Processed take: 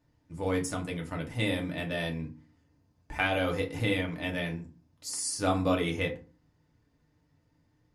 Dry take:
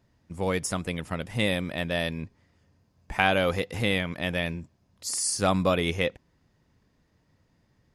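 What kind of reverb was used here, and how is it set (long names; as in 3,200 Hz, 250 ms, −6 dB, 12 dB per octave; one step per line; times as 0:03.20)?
feedback delay network reverb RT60 0.35 s, low-frequency decay 1.45×, high-frequency decay 0.6×, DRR −0.5 dB
level −7.5 dB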